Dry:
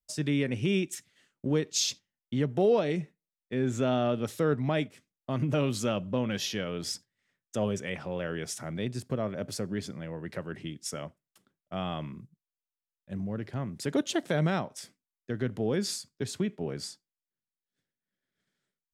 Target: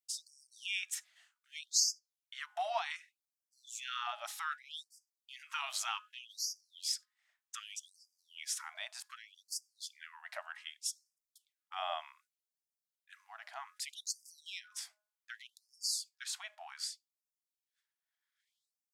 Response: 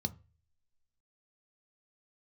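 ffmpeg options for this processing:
-af "bandreject=frequency=209.9:width_type=h:width=4,bandreject=frequency=419.8:width_type=h:width=4,bandreject=frequency=629.7:width_type=h:width=4,bandreject=frequency=839.6:width_type=h:width=4,bandreject=frequency=1049.5:width_type=h:width=4,bandreject=frequency=1259.4:width_type=h:width=4,bandreject=frequency=1469.3:width_type=h:width=4,bandreject=frequency=1679.2:width_type=h:width=4,afftfilt=real='re*gte(b*sr/1024,600*pow(4700/600,0.5+0.5*sin(2*PI*0.65*pts/sr)))':imag='im*gte(b*sr/1024,600*pow(4700/600,0.5+0.5*sin(2*PI*0.65*pts/sr)))':win_size=1024:overlap=0.75"

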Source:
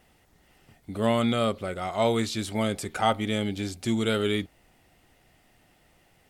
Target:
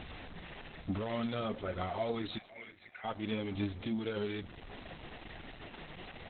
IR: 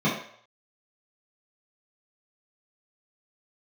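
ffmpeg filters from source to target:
-filter_complex "[0:a]aeval=exprs='val(0)+0.5*0.0141*sgn(val(0))':channel_layout=same,asplit=3[link_01][link_02][link_03];[link_01]afade=type=out:start_time=3.71:duration=0.02[link_04];[link_02]acompressor=threshold=-32dB:ratio=3,afade=type=in:start_time=3.71:duration=0.02,afade=type=out:start_time=4.16:duration=0.02[link_05];[link_03]afade=type=in:start_time=4.16:duration=0.02[link_06];[link_04][link_05][link_06]amix=inputs=3:normalize=0,alimiter=limit=-20.5dB:level=0:latency=1:release=399,asplit=3[link_07][link_08][link_09];[link_07]afade=type=out:start_time=2.37:duration=0.02[link_10];[link_08]bandpass=frequency=2100:width_type=q:width=4.8:csg=0,afade=type=in:start_time=2.37:duration=0.02,afade=type=out:start_time=3.03:duration=0.02[link_11];[link_09]afade=type=in:start_time=3.03:duration=0.02[link_12];[link_10][link_11][link_12]amix=inputs=3:normalize=0,asoftclip=type=tanh:threshold=-23.5dB,flanger=delay=0:depth=6.8:regen=41:speed=1.1:shape=triangular,asettb=1/sr,asplit=3[link_13][link_14][link_15];[link_13]atrim=end=0.954[link_16];[link_14]atrim=start=0.95:end=1.46,asetpts=PTS-STARTPTS,afade=type=in:duration=0.004:curve=qsin,afade=type=out:start_time=0.506:duration=0.004:curve=qsin,acrusher=bits=6:mix=0:aa=0.5[link_17];[link_15]atrim=start=1.456[link_18];[link_16][link_17]acrossfade=duration=0.004:curve1=hsin:curve2=qsin[link_19];[link_19][link_18]acrossfade=duration=0.004:curve1=qsin:curve2=hsin,asplit=2[link_20][link_21];[link_21]aecho=0:1:510|1020|1530:0.1|0.032|0.0102[link_22];[link_20][link_22]amix=inputs=2:normalize=0,volume=1.5dB" -ar 48000 -c:a libopus -b:a 8k

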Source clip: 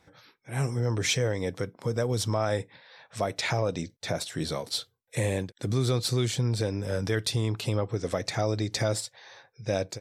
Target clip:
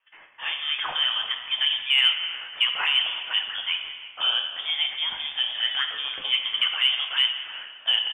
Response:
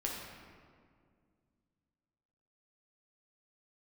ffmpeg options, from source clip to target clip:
-filter_complex "[0:a]highpass=630,agate=range=-18dB:threshold=-60dB:ratio=16:detection=peak,asplit=4[link_01][link_02][link_03][link_04];[link_02]adelay=427,afreqshift=49,volume=-19.5dB[link_05];[link_03]adelay=854,afreqshift=98,volume=-28.6dB[link_06];[link_04]adelay=1281,afreqshift=147,volume=-37.7dB[link_07];[link_01][link_05][link_06][link_07]amix=inputs=4:normalize=0,acrossover=split=1900[link_08][link_09];[link_09]acompressor=threshold=-47dB:ratio=6[link_10];[link_08][link_10]amix=inputs=2:normalize=0,asetrate=54243,aresample=44100,lowpass=frequency=3100:width_type=q:width=0.5098,lowpass=frequency=3100:width_type=q:width=0.6013,lowpass=frequency=3100:width_type=q:width=0.9,lowpass=frequency=3100:width_type=q:width=2.563,afreqshift=-3700,asplit=2[link_11][link_12];[1:a]atrim=start_sample=2205,asetrate=48510,aresample=44100,highshelf=frequency=2800:gain=11.5[link_13];[link_12][link_13]afir=irnorm=-1:irlink=0,volume=-2dB[link_14];[link_11][link_14]amix=inputs=2:normalize=0,acontrast=51,volume=-2dB"

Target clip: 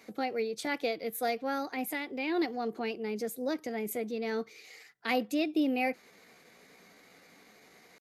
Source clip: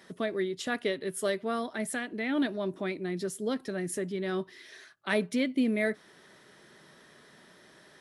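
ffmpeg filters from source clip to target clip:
ffmpeg -i in.wav -af "acontrast=23,asetrate=52444,aresample=44100,atempo=0.840896,volume=-6.5dB" out.wav

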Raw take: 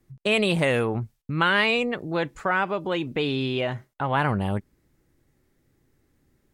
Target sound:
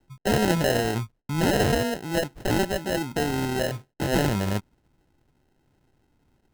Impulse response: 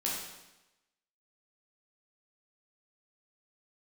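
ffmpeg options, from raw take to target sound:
-af "acrusher=samples=38:mix=1:aa=0.000001"

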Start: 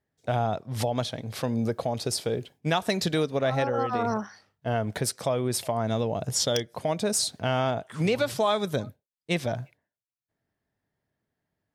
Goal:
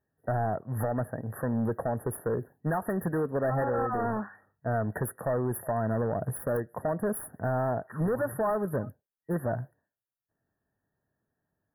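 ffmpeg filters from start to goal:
ffmpeg -i in.wav -af "volume=24dB,asoftclip=hard,volume=-24dB,afftfilt=real='re*(1-between(b*sr/4096,1900,9900))':imag='im*(1-between(b*sr/4096,1900,9900))':win_size=4096:overlap=0.75" out.wav

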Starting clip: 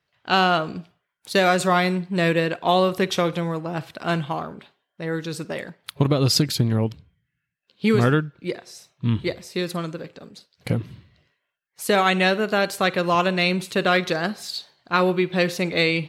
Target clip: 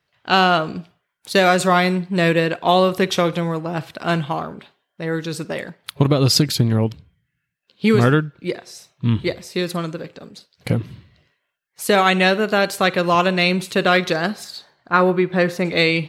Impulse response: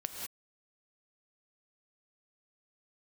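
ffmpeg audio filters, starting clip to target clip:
-filter_complex "[0:a]asettb=1/sr,asplit=3[link_01][link_02][link_03];[link_01]atrim=end=14.444[link_04];[link_02]atrim=start=14.44:end=15.65,asetpts=PTS-STARTPTS,afade=type=in:duration=0.004:curve=qsin,afade=type=out:start_time=1.206:duration=0.004:curve=qsin,highshelf=frequency=2200:width_type=q:width=1.5:gain=-6.5[link_05];[link_03]atrim=start=15.646[link_06];[link_04][link_05]acrossfade=duration=0.004:curve1=hsin:curve2=qsin[link_07];[link_07][link_06]acrossfade=duration=0.004:curve1=qsin:curve2=hsin,volume=3.5dB"

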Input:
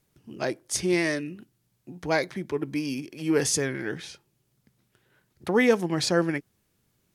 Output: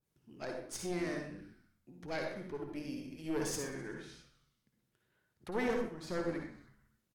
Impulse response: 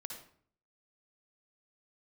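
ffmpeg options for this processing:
-filter_complex "[0:a]asplit=5[link_01][link_02][link_03][link_04][link_05];[link_02]adelay=127,afreqshift=-94,volume=-18dB[link_06];[link_03]adelay=254,afreqshift=-188,volume=-23.8dB[link_07];[link_04]adelay=381,afreqshift=-282,volume=-29.7dB[link_08];[link_05]adelay=508,afreqshift=-376,volume=-35.5dB[link_09];[link_01][link_06][link_07][link_08][link_09]amix=inputs=5:normalize=0,aeval=exprs='(tanh(7.08*val(0)+0.7)-tanh(0.7))/7.08':channel_layout=same,asettb=1/sr,asplit=3[link_10][link_11][link_12];[link_10]atrim=end=5.684[link_13];[link_11]atrim=start=5.68:end=6.09,asetpts=PTS-STARTPTS,afade=type=in:duration=0.004:curve=qsin,afade=type=out:start_time=0.406:duration=0.004:curve=qsin,agate=range=-33dB:threshold=-23dB:ratio=3:detection=peak[link_14];[link_12]atrim=start=6.086[link_15];[link_13][link_14]acrossfade=duration=0.004:curve1=hsin:curve2=qsin[link_16];[link_16][link_15]acrossfade=duration=0.004:curve1=qsin:curve2=hsin[link_17];[1:a]atrim=start_sample=2205,afade=type=out:start_time=0.32:duration=0.01,atrim=end_sample=14553[link_18];[link_17][link_18]afir=irnorm=-1:irlink=0,adynamicequalizer=threshold=0.00355:dfrequency=1800:dqfactor=0.7:tfrequency=1800:tqfactor=0.7:attack=5:release=100:ratio=0.375:range=2.5:mode=cutabove:tftype=highshelf,volume=-5dB"

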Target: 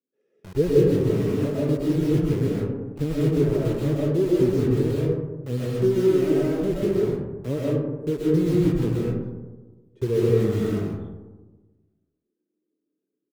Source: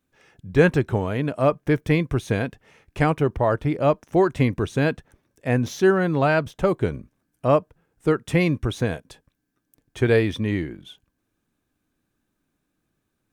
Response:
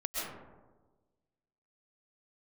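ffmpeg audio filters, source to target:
-filter_complex "[0:a]acrossover=split=5200[link_01][link_02];[link_02]acompressor=threshold=-54dB:ratio=4:attack=1:release=60[link_03];[link_01][link_03]amix=inputs=2:normalize=0,firequalizer=gain_entry='entry(260,0);entry(430,2);entry(720,-24)':delay=0.05:min_phase=1,acrossover=split=260|710|2900[link_04][link_05][link_06][link_07];[link_04]acrusher=bits=5:mix=0:aa=0.000001[link_08];[link_08][link_05][link_06][link_07]amix=inputs=4:normalize=0,flanger=delay=1.5:depth=5.7:regen=-54:speed=0.19:shape=sinusoidal[link_09];[1:a]atrim=start_sample=2205[link_10];[link_09][link_10]afir=irnorm=-1:irlink=0"

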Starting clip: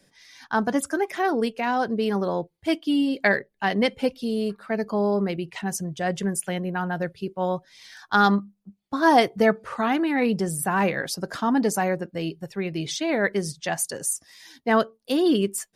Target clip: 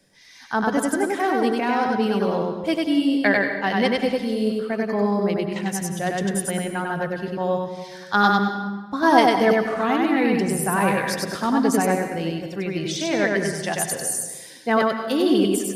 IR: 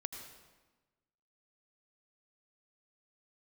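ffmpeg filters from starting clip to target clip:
-filter_complex "[0:a]asplit=2[link_01][link_02];[1:a]atrim=start_sample=2205,adelay=97[link_03];[link_02][link_03]afir=irnorm=-1:irlink=0,volume=1dB[link_04];[link_01][link_04]amix=inputs=2:normalize=0"

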